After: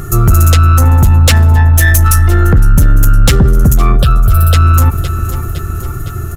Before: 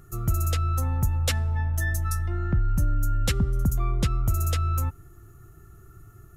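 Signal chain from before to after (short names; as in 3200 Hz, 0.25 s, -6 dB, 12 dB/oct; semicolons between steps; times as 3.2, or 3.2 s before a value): 1.73–3.13 high shelf 7500 Hz +8 dB; soft clip -22 dBFS, distortion -14 dB; 3.96–4.54 fixed phaser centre 1400 Hz, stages 8; feedback echo 0.511 s, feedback 59%, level -18 dB; maximiser +28.5 dB; gain -1 dB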